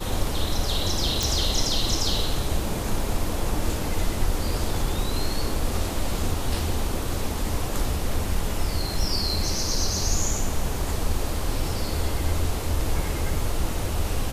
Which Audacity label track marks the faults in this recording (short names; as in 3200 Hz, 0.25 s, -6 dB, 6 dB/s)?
1.230000	1.230000	pop